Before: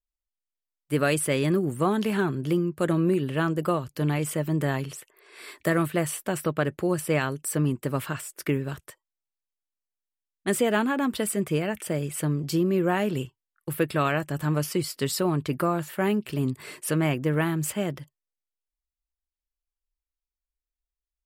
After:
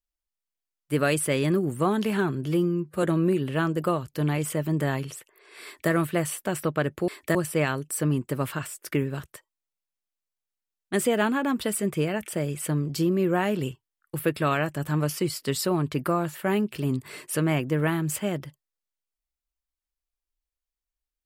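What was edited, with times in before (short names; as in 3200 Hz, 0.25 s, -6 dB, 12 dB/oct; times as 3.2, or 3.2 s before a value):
2.46–2.84 stretch 1.5×
5.45–5.72 copy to 6.89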